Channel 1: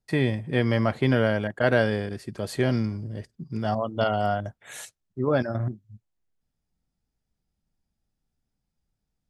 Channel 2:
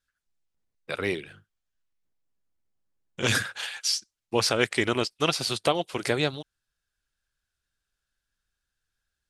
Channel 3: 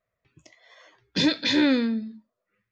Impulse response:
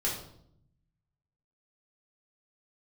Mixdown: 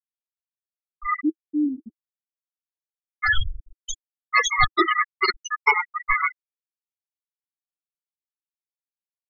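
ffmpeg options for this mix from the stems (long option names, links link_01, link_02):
-filter_complex "[0:a]lowpass=1200,volume=-13dB[link_01];[1:a]aeval=exprs='val(0)*sgn(sin(2*PI*1600*n/s))':channel_layout=same,volume=2.5dB,asplit=3[link_02][link_03][link_04];[link_03]volume=-5dB[link_05];[link_04]volume=-9dB[link_06];[2:a]volume=-6dB[link_07];[3:a]atrim=start_sample=2205[link_08];[link_05][link_08]afir=irnorm=-1:irlink=0[link_09];[link_06]aecho=0:1:1091:1[link_10];[link_01][link_02][link_07][link_09][link_10]amix=inputs=5:normalize=0,afftfilt=real='re*gte(hypot(re,im),0.447)':imag='im*gte(hypot(re,im),0.447)':win_size=1024:overlap=0.75,equalizer=frequency=320:width=3.6:gain=9.5,aecho=1:1:2.4:0.41"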